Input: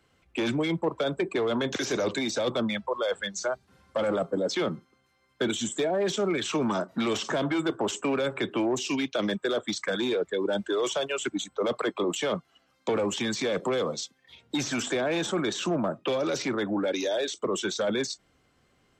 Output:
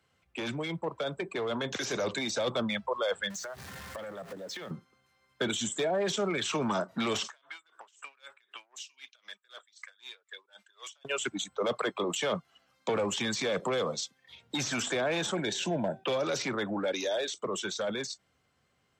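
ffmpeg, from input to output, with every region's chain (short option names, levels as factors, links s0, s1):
-filter_complex "[0:a]asettb=1/sr,asplit=3[s0][s1][s2];[s0]atrim=end=3.304[s3];[s1]atrim=start=3.3:end=4.71,asetpts=PTS-STARTPTS,afade=t=in:d=0.004:c=qsin,afade=t=out:st=1.406:d=0.004:c=qsin,aeval=exprs='val(0)+0.5*0.0119*sgn(val(0))':c=same,equalizer=f=1800:w=7.5:g=9.5,acompressor=threshold=0.0178:ratio=16:attack=3.2:release=140:knee=1:detection=peak[s4];[s2]atrim=start=4.706[s5];[s3][s4]acrossfade=d=0.004:c1=hsin:c2=qsin[s6];[s6][s5]acrossfade=d=0.004:c1=qsin:c2=hsin,asettb=1/sr,asplit=3[s7][s8][s9];[s7]atrim=end=7.274[s10];[s8]atrim=start=7.27:end=11.05,asetpts=PTS-STARTPTS,afade=t=in:d=0.004:c=qsin,afade=t=out:st=3.776:d=0.004:c=qsin,highpass=1500,acompressor=threshold=0.0141:ratio=6:attack=3.2:release=140:knee=1:detection=peak,aeval=exprs='val(0)*pow(10,-27*(0.5-0.5*cos(2*PI*3.9*n/s))/20)':c=same[s11];[s9]atrim=start=11.046[s12];[s10][s11]acrossfade=d=0.004:c1=hsin:c2=qsin[s13];[s13][s12]acrossfade=d=0.004:c1=qsin:c2=hsin,asettb=1/sr,asplit=3[s14][s15][s16];[s14]atrim=end=15.354[s17];[s15]atrim=start=15.35:end=16.04,asetpts=PTS-STARTPTS,afade=t=in:d=0.004:c=qsin,afade=t=out:st=0.686:d=0.004:c=qsin,asuperstop=centerf=1200:order=4:qfactor=2.2,bandreject=f=384.1:t=h:w=4,bandreject=f=768.2:t=h:w=4,bandreject=f=1152.3:t=h:w=4,bandreject=f=1536.4:t=h:w=4,bandreject=f=1920.5:t=h:w=4,bandreject=f=2304.6:t=h:w=4,bandreject=f=2688.7:t=h:w=4,bandreject=f=3072.8:t=h:w=4,bandreject=f=3456.9:t=h:w=4,bandreject=f=3841:t=h:w=4,bandreject=f=4225.1:t=h:w=4[s18];[s16]atrim=start=16.036[s19];[s17][s18]acrossfade=d=0.004:c1=hsin:c2=qsin[s20];[s20][s19]acrossfade=d=0.004:c1=qsin:c2=hsin,highpass=68,equalizer=f=310:w=1.5:g=-6.5,dynaudnorm=f=220:g=17:m=1.58,volume=0.596"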